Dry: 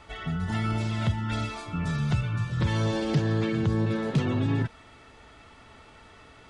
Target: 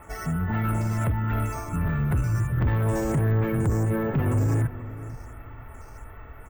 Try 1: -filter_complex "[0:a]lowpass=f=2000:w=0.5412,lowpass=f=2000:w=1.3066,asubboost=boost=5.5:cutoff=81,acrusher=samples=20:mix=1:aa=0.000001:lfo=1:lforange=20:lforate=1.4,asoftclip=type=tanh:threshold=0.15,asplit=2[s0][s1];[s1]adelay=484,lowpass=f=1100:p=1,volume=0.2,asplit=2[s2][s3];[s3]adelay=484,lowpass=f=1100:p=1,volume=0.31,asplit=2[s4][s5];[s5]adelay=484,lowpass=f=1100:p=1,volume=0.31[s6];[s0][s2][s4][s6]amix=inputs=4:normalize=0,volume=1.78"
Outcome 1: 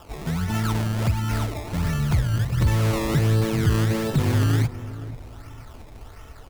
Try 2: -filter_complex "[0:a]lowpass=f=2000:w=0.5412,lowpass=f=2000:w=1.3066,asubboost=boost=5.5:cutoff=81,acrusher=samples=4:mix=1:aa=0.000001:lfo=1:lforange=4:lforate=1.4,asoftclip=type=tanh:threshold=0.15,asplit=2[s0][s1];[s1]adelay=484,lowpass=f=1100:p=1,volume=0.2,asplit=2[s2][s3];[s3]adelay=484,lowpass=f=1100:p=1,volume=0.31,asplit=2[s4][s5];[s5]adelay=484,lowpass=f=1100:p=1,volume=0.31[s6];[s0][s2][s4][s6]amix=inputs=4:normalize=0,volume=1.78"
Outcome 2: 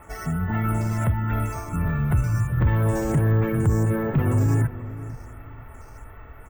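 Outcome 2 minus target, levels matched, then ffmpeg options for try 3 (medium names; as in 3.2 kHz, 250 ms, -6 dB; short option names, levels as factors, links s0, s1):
saturation: distortion -8 dB
-filter_complex "[0:a]lowpass=f=2000:w=0.5412,lowpass=f=2000:w=1.3066,asubboost=boost=5.5:cutoff=81,acrusher=samples=4:mix=1:aa=0.000001:lfo=1:lforange=4:lforate=1.4,asoftclip=type=tanh:threshold=0.0668,asplit=2[s0][s1];[s1]adelay=484,lowpass=f=1100:p=1,volume=0.2,asplit=2[s2][s3];[s3]adelay=484,lowpass=f=1100:p=1,volume=0.31,asplit=2[s4][s5];[s5]adelay=484,lowpass=f=1100:p=1,volume=0.31[s6];[s0][s2][s4][s6]amix=inputs=4:normalize=0,volume=1.78"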